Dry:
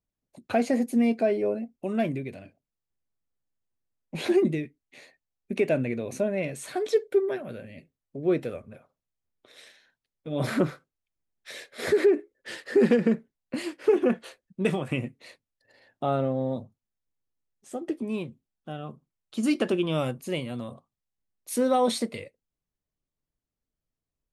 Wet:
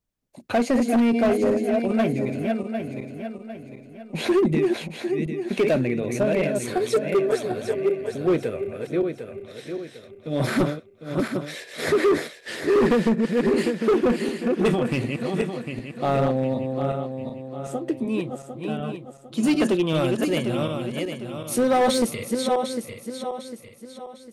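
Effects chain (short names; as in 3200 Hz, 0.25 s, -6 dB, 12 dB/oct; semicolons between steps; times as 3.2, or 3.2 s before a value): regenerating reverse delay 0.376 s, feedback 62%, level -4.5 dB; hard clip -19.5 dBFS, distortion -13 dB; gain +4.5 dB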